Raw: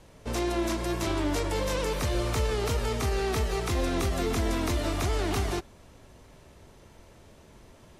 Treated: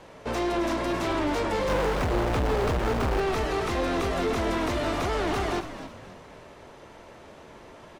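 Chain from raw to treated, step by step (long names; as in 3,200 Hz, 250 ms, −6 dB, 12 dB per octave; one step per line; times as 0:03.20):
0:01.68–0:03.21: each half-wave held at its own peak
mid-hump overdrive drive 19 dB, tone 1,400 Hz, clips at −18.5 dBFS
echo with shifted repeats 269 ms, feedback 37%, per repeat −81 Hz, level −11 dB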